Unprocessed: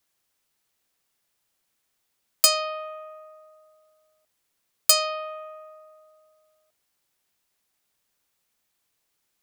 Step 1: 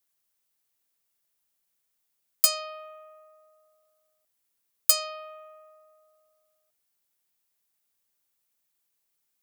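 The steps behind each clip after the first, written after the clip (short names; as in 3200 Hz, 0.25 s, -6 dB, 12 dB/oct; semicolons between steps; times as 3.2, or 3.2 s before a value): high shelf 8600 Hz +10 dB; gain -8.5 dB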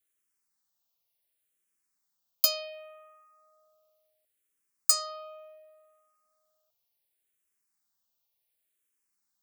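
endless phaser -0.69 Hz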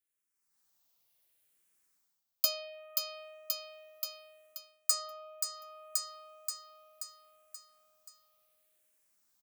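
on a send: feedback echo 0.53 s, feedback 50%, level -8 dB; on the sum: AGC gain up to 13.5 dB; gain -8 dB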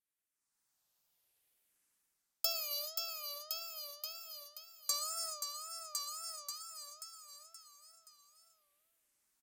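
non-linear reverb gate 0.45 s flat, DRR -0.5 dB; downsampling 32000 Hz; wow and flutter 120 cents; gain -5 dB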